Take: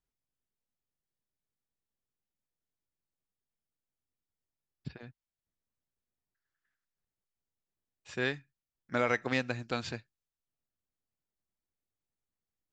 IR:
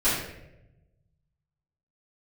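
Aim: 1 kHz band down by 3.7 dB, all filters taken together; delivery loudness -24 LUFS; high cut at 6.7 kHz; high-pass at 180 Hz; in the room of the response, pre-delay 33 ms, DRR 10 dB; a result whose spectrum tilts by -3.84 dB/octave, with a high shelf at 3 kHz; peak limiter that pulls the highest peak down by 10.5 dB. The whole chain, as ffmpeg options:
-filter_complex "[0:a]highpass=180,lowpass=6700,equalizer=f=1000:t=o:g=-7,highshelf=f=3000:g=6.5,alimiter=level_in=1.12:limit=0.0631:level=0:latency=1,volume=0.891,asplit=2[s0][s1];[1:a]atrim=start_sample=2205,adelay=33[s2];[s1][s2]afir=irnorm=-1:irlink=0,volume=0.0631[s3];[s0][s3]amix=inputs=2:normalize=0,volume=6.31"

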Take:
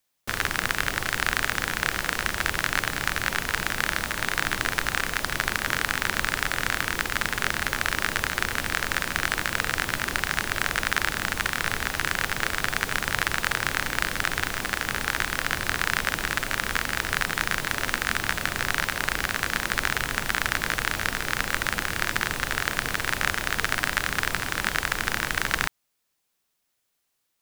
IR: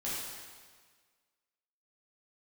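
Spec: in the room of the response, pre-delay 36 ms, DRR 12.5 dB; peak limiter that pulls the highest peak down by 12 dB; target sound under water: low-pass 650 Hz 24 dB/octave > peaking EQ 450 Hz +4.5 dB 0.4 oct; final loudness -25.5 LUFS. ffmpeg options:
-filter_complex "[0:a]alimiter=limit=0.2:level=0:latency=1,asplit=2[s0][s1];[1:a]atrim=start_sample=2205,adelay=36[s2];[s1][s2]afir=irnorm=-1:irlink=0,volume=0.15[s3];[s0][s3]amix=inputs=2:normalize=0,lowpass=f=650:w=0.5412,lowpass=f=650:w=1.3066,equalizer=f=450:t=o:w=0.4:g=4.5,volume=5.96"

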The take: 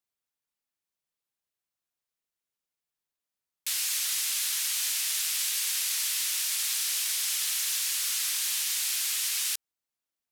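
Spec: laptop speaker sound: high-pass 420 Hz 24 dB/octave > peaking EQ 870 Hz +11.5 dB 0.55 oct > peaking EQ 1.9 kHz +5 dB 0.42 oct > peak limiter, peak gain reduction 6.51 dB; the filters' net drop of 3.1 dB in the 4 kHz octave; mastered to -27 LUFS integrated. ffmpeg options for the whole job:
-af "highpass=f=420:w=0.5412,highpass=f=420:w=1.3066,equalizer=f=870:t=o:w=0.55:g=11.5,equalizer=f=1900:t=o:w=0.42:g=5,equalizer=f=4000:t=o:g=-4.5,volume=1.68,alimiter=limit=0.1:level=0:latency=1"

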